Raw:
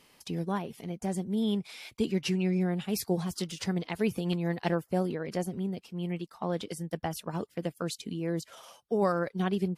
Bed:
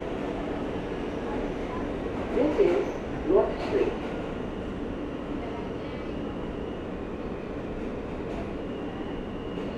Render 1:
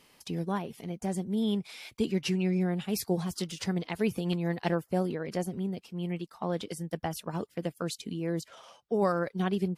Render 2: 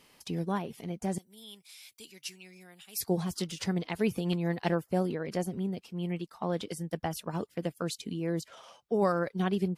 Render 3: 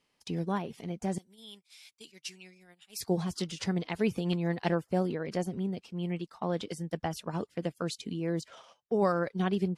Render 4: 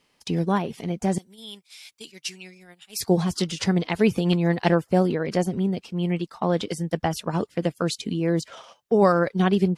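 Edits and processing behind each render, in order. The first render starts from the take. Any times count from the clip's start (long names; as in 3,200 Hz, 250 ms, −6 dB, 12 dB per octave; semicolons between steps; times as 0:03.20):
0:08.48–0:08.94: high-frequency loss of the air 73 metres
0:01.18–0:03.01: first-order pre-emphasis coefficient 0.97
noise gate −51 dBFS, range −14 dB; low-pass filter 8,400 Hz 12 dB per octave
level +9 dB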